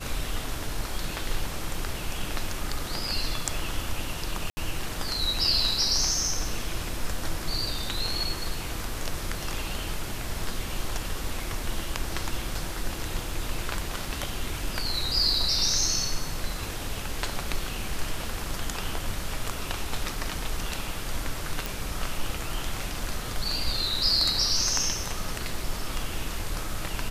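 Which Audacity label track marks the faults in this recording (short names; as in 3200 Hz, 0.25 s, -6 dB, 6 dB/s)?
4.500000	4.570000	gap 70 ms
21.660000	21.660000	pop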